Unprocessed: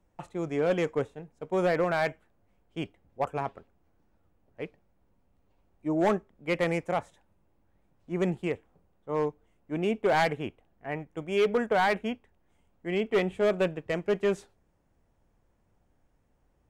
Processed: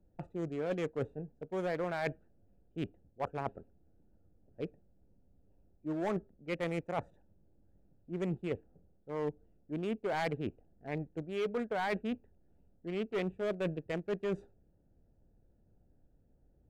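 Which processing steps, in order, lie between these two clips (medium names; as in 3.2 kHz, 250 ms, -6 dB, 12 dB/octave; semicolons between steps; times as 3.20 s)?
local Wiener filter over 41 samples; reverse; compression, threshold -35 dBFS, peak gain reduction 12.5 dB; reverse; trim +2.5 dB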